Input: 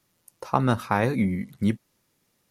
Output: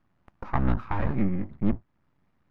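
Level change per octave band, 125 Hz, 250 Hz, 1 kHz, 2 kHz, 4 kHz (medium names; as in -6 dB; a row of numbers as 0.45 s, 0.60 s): -2.0 dB, -3.0 dB, -7.0 dB, -8.0 dB, under -10 dB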